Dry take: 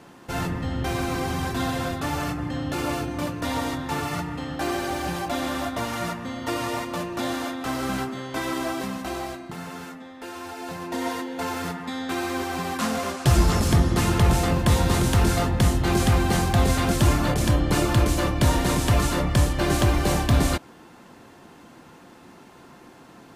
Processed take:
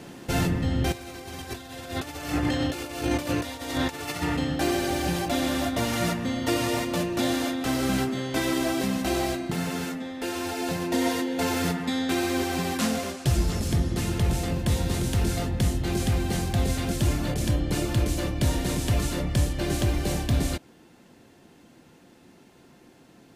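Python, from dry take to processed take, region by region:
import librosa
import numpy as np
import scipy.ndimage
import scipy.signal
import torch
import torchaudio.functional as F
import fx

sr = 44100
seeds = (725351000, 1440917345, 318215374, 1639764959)

y = fx.chain(x, sr, fx.highpass(hz=59.0, slope=12),
    fx.peak_eq(hz=160.0, db=-11.5, octaves=1.6),
    fx.over_compress(threshold_db=-35.0, ratio=-0.5), at=(0.92, 4.37))
y = fx.peak_eq(y, sr, hz=1100.0, db=-9.0, octaves=1.1)
y = fx.rider(y, sr, range_db=10, speed_s=0.5)
y = y * librosa.db_to_amplitude(-1.5)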